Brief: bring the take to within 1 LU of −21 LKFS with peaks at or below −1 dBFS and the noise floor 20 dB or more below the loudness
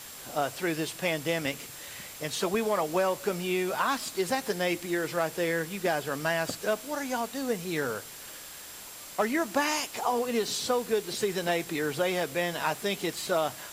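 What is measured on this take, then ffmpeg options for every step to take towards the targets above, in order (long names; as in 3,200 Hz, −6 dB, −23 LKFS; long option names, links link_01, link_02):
interfering tone 7,500 Hz; level of the tone −52 dBFS; background noise floor −44 dBFS; target noise floor −50 dBFS; integrated loudness −29.5 LKFS; sample peak −13.5 dBFS; target loudness −21.0 LKFS
→ -af "bandreject=frequency=7500:width=30"
-af "afftdn=noise_reduction=6:noise_floor=-44"
-af "volume=8.5dB"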